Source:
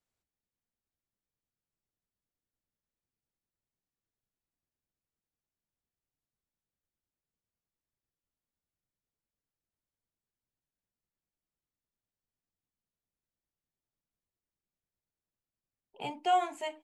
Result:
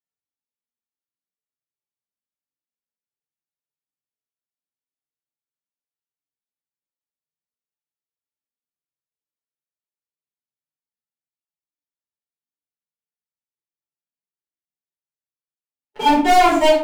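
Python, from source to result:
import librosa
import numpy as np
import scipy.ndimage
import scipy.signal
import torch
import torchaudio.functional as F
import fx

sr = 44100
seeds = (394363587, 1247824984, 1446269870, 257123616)

p1 = fx.hpss_only(x, sr, part='harmonic')
p2 = fx.leveller(p1, sr, passes=3)
p3 = scipy.signal.sosfilt(scipy.signal.butter(2, 180.0, 'highpass', fs=sr, output='sos'), p2)
p4 = fx.leveller(p3, sr, passes=3)
p5 = p4 + fx.echo_single(p4, sr, ms=664, db=-20.5, dry=0)
p6 = fx.room_shoebox(p5, sr, seeds[0], volume_m3=310.0, walls='furnished', distance_m=4.4)
y = p6 * 10.0 ** (-1.0 / 20.0)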